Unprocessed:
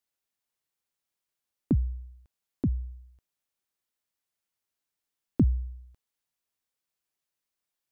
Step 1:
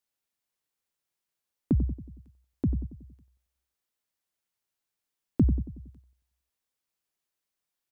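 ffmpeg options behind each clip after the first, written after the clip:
ffmpeg -i in.wav -filter_complex "[0:a]asplit=2[link_01][link_02];[link_02]adelay=92,lowpass=frequency=930:poles=1,volume=-9dB,asplit=2[link_03][link_04];[link_04]adelay=92,lowpass=frequency=930:poles=1,volume=0.53,asplit=2[link_05][link_06];[link_06]adelay=92,lowpass=frequency=930:poles=1,volume=0.53,asplit=2[link_07][link_08];[link_08]adelay=92,lowpass=frequency=930:poles=1,volume=0.53,asplit=2[link_09][link_10];[link_10]adelay=92,lowpass=frequency=930:poles=1,volume=0.53,asplit=2[link_11][link_12];[link_12]adelay=92,lowpass=frequency=930:poles=1,volume=0.53[link_13];[link_01][link_03][link_05][link_07][link_09][link_11][link_13]amix=inputs=7:normalize=0" out.wav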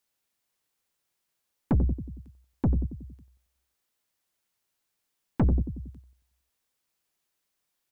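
ffmpeg -i in.wav -af "aeval=exprs='(tanh(20*val(0)+0.3)-tanh(0.3))/20':channel_layout=same,volume=7dB" out.wav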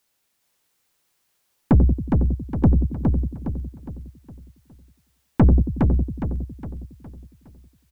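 ffmpeg -i in.wav -af "aecho=1:1:412|824|1236|1648|2060:0.631|0.265|0.111|0.0467|0.0196,volume=8.5dB" out.wav

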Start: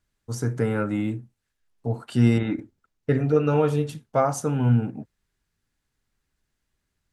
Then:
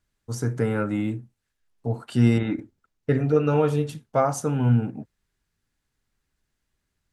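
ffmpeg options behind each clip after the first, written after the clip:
ffmpeg -i in.wav -af anull out.wav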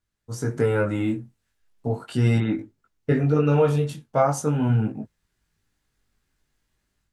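ffmpeg -i in.wav -af "dynaudnorm=framelen=270:gausssize=3:maxgain=9dB,flanger=delay=18.5:depth=3.3:speed=0.39,volume=-2dB" out.wav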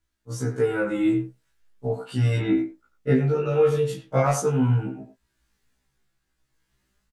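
ffmpeg -i in.wav -filter_complex "[0:a]tremolo=f=0.72:d=0.47,asplit=2[link_01][link_02];[link_02]adelay=90,highpass=300,lowpass=3400,asoftclip=type=hard:threshold=-16.5dB,volume=-9dB[link_03];[link_01][link_03]amix=inputs=2:normalize=0,afftfilt=real='re*1.73*eq(mod(b,3),0)':imag='im*1.73*eq(mod(b,3),0)':win_size=2048:overlap=0.75,volume=5dB" out.wav

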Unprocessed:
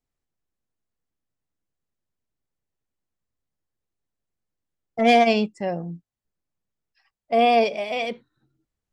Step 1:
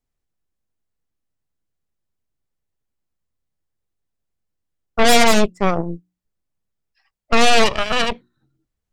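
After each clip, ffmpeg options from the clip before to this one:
ffmpeg -i in.wav -af "lowshelf=frequency=120:gain=5.5,bandreject=frequency=60:width_type=h:width=6,bandreject=frequency=120:width_type=h:width=6,bandreject=frequency=180:width_type=h:width=6,bandreject=frequency=240:width_type=h:width=6,bandreject=frequency=300:width_type=h:width=6,bandreject=frequency=360:width_type=h:width=6,aeval=exprs='0.422*(cos(1*acos(clip(val(0)/0.422,-1,1)))-cos(1*PI/2))+0.188*(cos(8*acos(clip(val(0)/0.422,-1,1)))-cos(8*PI/2))':channel_layout=same,volume=1dB" out.wav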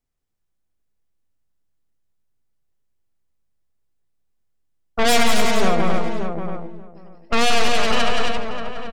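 ffmpeg -i in.wav -filter_complex "[0:a]asplit=2[link_01][link_02];[link_02]aecho=0:1:174.9|271.1:0.562|0.501[link_03];[link_01][link_03]amix=inputs=2:normalize=0,asoftclip=type=tanh:threshold=-7dB,asplit=2[link_04][link_05];[link_05]adelay=583,lowpass=frequency=1200:poles=1,volume=-5.5dB,asplit=2[link_06][link_07];[link_07]adelay=583,lowpass=frequency=1200:poles=1,volume=0.16,asplit=2[link_08][link_09];[link_09]adelay=583,lowpass=frequency=1200:poles=1,volume=0.16[link_10];[link_06][link_08][link_10]amix=inputs=3:normalize=0[link_11];[link_04][link_11]amix=inputs=2:normalize=0,volume=-1dB" out.wav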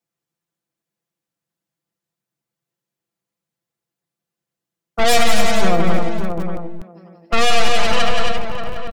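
ffmpeg -i in.wav -filter_complex "[0:a]aecho=1:1:5.9:0.89,acrossover=split=100|2700[link_01][link_02][link_03];[link_01]acrusher=bits=4:mix=0:aa=0.000001[link_04];[link_04][link_02][link_03]amix=inputs=3:normalize=0,volume=-1dB" out.wav

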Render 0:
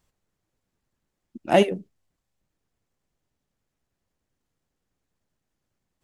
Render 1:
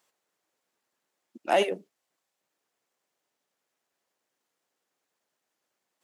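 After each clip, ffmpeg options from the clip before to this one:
ffmpeg -i in.wav -af "highpass=470,alimiter=limit=-15.5dB:level=0:latency=1:release=136,volume=3.5dB" out.wav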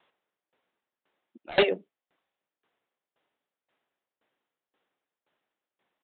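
ffmpeg -i in.wav -af "aresample=8000,aeval=exprs='0.0944*(abs(mod(val(0)/0.0944+3,4)-2)-1)':channel_layout=same,aresample=44100,aeval=exprs='val(0)*pow(10,-22*if(lt(mod(1.9*n/s,1),2*abs(1.9)/1000),1-mod(1.9*n/s,1)/(2*abs(1.9)/1000),(mod(1.9*n/s,1)-2*abs(1.9)/1000)/(1-2*abs(1.9)/1000))/20)':channel_layout=same,volume=8.5dB" out.wav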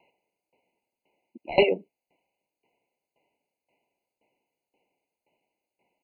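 ffmpeg -i in.wav -filter_complex "[0:a]asplit=2[link_01][link_02];[link_02]acompressor=threshold=-27dB:ratio=8,volume=0dB[link_03];[link_01][link_03]amix=inputs=2:normalize=0,afftfilt=real='re*eq(mod(floor(b*sr/1024/1000),2),0)':imag='im*eq(mod(floor(b*sr/1024/1000),2),0)':win_size=1024:overlap=0.75" out.wav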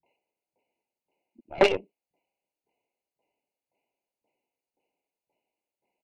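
ffmpeg -i in.wav -filter_complex "[0:a]acrossover=split=170|1800[link_01][link_02][link_03];[link_02]adelay=30[link_04];[link_03]adelay=60[link_05];[link_01][link_04][link_05]amix=inputs=3:normalize=0,aeval=exprs='0.376*(cos(1*acos(clip(val(0)/0.376,-1,1)))-cos(1*PI/2))+0.0841*(cos(3*acos(clip(val(0)/0.376,-1,1)))-cos(3*PI/2))+0.0106*(cos(8*acos(clip(val(0)/0.376,-1,1)))-cos(8*PI/2))':channel_layout=same,volume=4dB" out.wav

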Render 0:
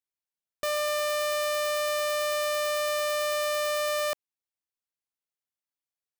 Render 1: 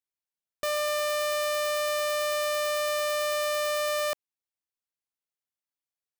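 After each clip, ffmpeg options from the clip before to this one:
ffmpeg -i in.wav -af anull out.wav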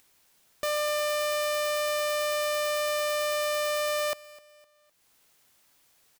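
ffmpeg -i in.wav -af "acompressor=mode=upward:threshold=-42dB:ratio=2.5,aecho=1:1:255|510|765:0.0944|0.0368|0.0144" out.wav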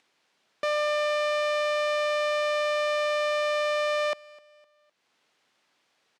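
ffmpeg -i in.wav -filter_complex "[0:a]asplit=2[link_01][link_02];[link_02]acrusher=bits=5:mix=0:aa=0.000001,volume=-10dB[link_03];[link_01][link_03]amix=inputs=2:normalize=0,highpass=200,lowpass=4000" out.wav

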